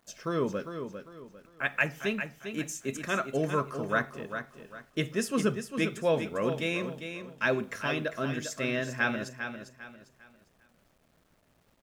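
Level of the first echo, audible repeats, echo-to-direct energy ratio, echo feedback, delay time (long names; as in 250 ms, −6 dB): −8.5 dB, 3, −8.0 dB, 32%, 400 ms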